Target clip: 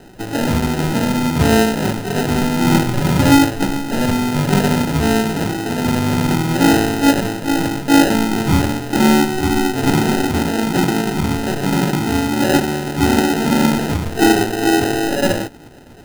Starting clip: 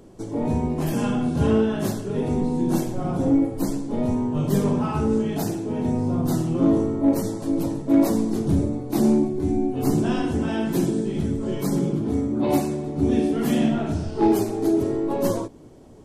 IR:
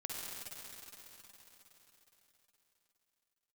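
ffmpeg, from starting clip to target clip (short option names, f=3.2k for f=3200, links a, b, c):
-filter_complex "[0:a]asettb=1/sr,asplit=3[a][b][c];[a]atrim=end=2.644[d];[b]atrim=start=2.64:end=3.52,asetpts=PTS-STARTPTS,afade=t=in:d=0.004:c=qsin,afade=t=out:st=0.876:d=0.004:c=qsin,equalizer=f=89:w=0.63:g=8[e];[c]atrim=start=3.516[f];[d][e]acrossfade=d=0.004:c1=hsin:c2=qsin[g];[g][f]acrossfade=d=0.004:c1=qsin:c2=hsin,acrusher=samples=39:mix=1:aa=0.000001,volume=6dB"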